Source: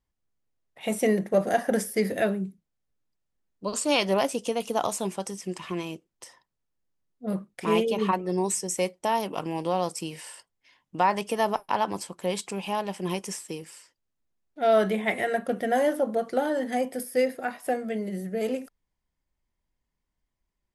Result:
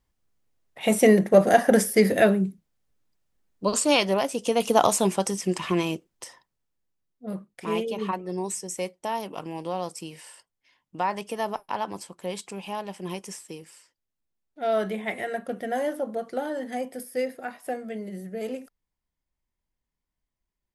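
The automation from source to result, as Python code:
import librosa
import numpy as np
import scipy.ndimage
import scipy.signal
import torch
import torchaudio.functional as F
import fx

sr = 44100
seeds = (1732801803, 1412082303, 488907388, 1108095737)

y = fx.gain(x, sr, db=fx.line((3.67, 6.5), (4.27, -1.5), (4.65, 7.5), (5.94, 7.5), (7.31, -4.0)))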